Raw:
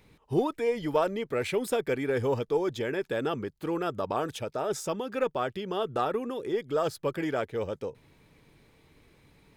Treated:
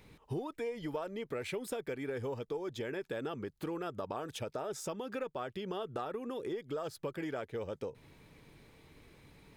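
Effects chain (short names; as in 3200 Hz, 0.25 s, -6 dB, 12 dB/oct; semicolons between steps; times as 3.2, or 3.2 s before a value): compressor 6:1, threshold -37 dBFS, peak gain reduction 16 dB; gain +1 dB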